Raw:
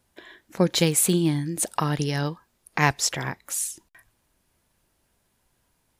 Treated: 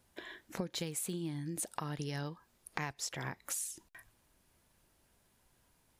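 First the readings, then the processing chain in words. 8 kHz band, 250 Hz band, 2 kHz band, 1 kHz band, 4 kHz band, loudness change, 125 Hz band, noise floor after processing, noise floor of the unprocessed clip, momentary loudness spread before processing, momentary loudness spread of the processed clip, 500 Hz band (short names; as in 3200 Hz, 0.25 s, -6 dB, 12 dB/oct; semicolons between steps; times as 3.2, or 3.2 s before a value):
-14.0 dB, -16.0 dB, -15.0 dB, -15.5 dB, -15.5 dB, -15.5 dB, -15.5 dB, -72 dBFS, -71 dBFS, 12 LU, 12 LU, -17.0 dB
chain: compressor 10:1, threshold -34 dBFS, peak gain reduction 20 dB; gain -1.5 dB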